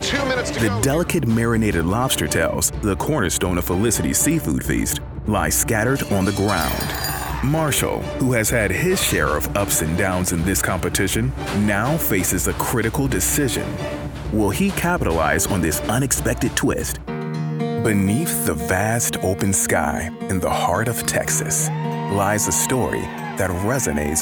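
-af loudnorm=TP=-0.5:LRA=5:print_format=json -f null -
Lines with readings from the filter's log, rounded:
"input_i" : "-19.9",
"input_tp" : "-2.6",
"input_lra" : "0.9",
"input_thresh" : "-29.9",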